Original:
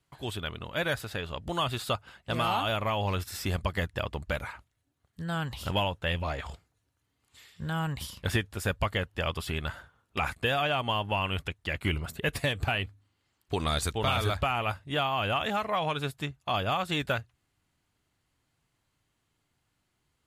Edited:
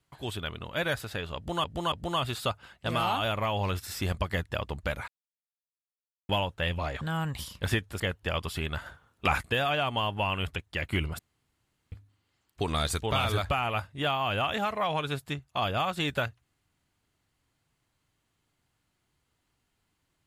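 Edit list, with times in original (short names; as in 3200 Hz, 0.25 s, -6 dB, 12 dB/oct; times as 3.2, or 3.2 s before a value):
1.36–1.64 loop, 3 plays
4.52–5.73 mute
6.45–7.63 cut
8.62–8.92 cut
9.78–10.41 gain +4 dB
12.11–12.84 room tone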